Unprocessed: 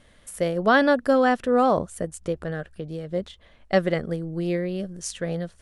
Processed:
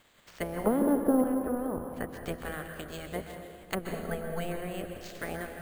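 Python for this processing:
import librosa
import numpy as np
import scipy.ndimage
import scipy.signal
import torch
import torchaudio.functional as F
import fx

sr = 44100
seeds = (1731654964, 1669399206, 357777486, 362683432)

p1 = fx.spec_clip(x, sr, under_db=23)
p2 = fx.env_lowpass_down(p1, sr, base_hz=450.0, full_db=-19.0)
p3 = fx.peak_eq(p2, sr, hz=320.0, db=9.5, octaves=3.0, at=(0.64, 1.24))
p4 = fx.comb(p3, sr, ms=4.5, depth=0.94, at=(3.91, 4.45))
p5 = p4 + fx.echo_single(p4, sr, ms=784, db=-20.5, dry=0)
p6 = fx.rev_plate(p5, sr, seeds[0], rt60_s=1.7, hf_ratio=0.75, predelay_ms=115, drr_db=5.0)
p7 = np.repeat(scipy.signal.resample_poly(p6, 1, 4), 4)[:len(p6)]
y = p7 * librosa.db_to_amplitude(-8.0)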